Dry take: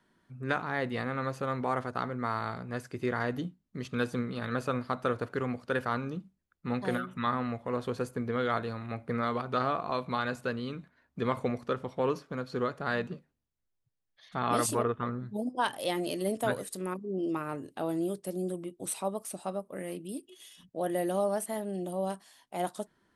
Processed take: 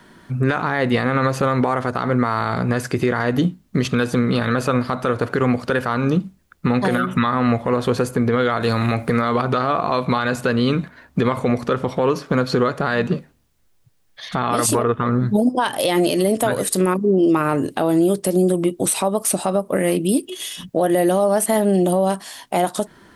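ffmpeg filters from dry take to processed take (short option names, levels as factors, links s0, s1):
-filter_complex "[0:a]asettb=1/sr,asplit=3[s0][s1][s2];[s0]atrim=end=8.604[s3];[s1]atrim=start=8.6:end=9.22,asetpts=PTS-STARTPTS,afade=t=in:d=0.004:c=qsin,afade=t=out:st=0.616:d=0.004:c=qsin,highshelf=f=3900:g=10.5[s4];[s2]atrim=start=9.216[s5];[s3][s4]acrossfade=d=0.004:c1=hsin:c2=qsin[s6];[s6][s5]acrossfade=d=0.004:c1=qsin:c2=hsin,acompressor=threshold=0.0178:ratio=6,alimiter=level_in=29.9:limit=0.891:release=50:level=0:latency=1,volume=0.447"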